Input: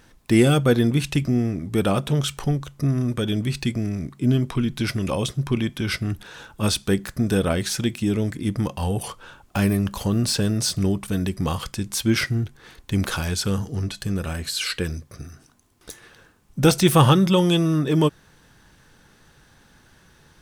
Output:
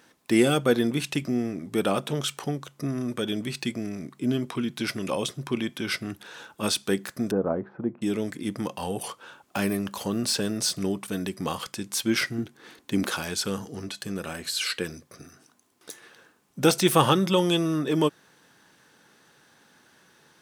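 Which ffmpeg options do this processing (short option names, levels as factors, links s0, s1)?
-filter_complex "[0:a]asettb=1/sr,asplit=3[s0][s1][s2];[s0]atrim=end=7.314[s3];[s1]atrim=start=7.31:end=8.02,asetpts=PTS-STARTPTS,afade=t=in:d=0.004:c=qsin,afade=t=out:st=0.706:d=0.004:c=qsin,lowpass=f=1100:w=0.5412,lowpass=f=1100:w=1.3066[s4];[s2]atrim=start=8.016[s5];[s3][s4]acrossfade=d=0.004:c1=hsin:c2=qsin[s6];[s6][s5]acrossfade=d=0.004:c1=qsin:c2=hsin,asettb=1/sr,asplit=3[s7][s8][s9];[s7]atrim=end=12.384[s10];[s8]atrim=start=12.38:end=13.1,asetpts=PTS-STARTPTS,afade=t=in:d=0.004:c=qsin,afade=t=out:st=0.716:d=0.004:c=qsin,equalizer=f=270:w=1.5:g=7[s11];[s9]atrim=start=13.096[s12];[s10][s11]acrossfade=d=0.004:c1=hsin:c2=qsin[s13];[s13][s12]acrossfade=d=0.004:c1=qsin:c2=hsin,highpass=230,volume=0.794"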